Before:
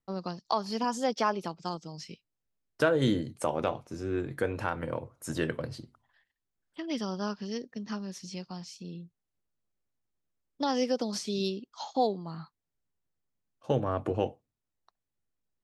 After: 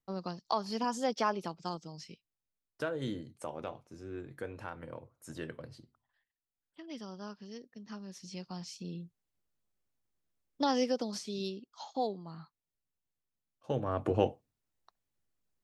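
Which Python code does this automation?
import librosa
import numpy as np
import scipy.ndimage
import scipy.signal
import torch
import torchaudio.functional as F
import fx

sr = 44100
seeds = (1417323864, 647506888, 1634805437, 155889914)

y = fx.gain(x, sr, db=fx.line((1.77, -3.0), (2.91, -11.0), (7.76, -11.0), (8.69, 0.0), (10.65, 0.0), (11.28, -6.5), (13.7, -6.5), (14.19, 1.5)))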